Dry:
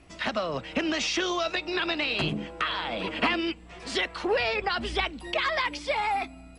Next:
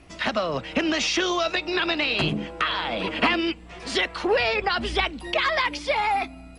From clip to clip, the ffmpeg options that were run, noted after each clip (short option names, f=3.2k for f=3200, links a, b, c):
-af "bandreject=f=7.8k:w=22,volume=4dB"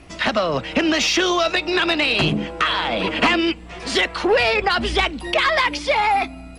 -af "asoftclip=type=tanh:threshold=-13.5dB,volume=6dB"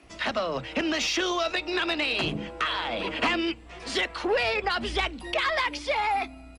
-filter_complex "[0:a]acrossover=split=180[a][b];[a]adelay=30[c];[c][b]amix=inputs=2:normalize=0,volume=-8dB"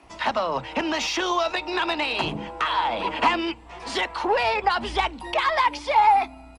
-af "equalizer=f=910:t=o:w=0.52:g=13"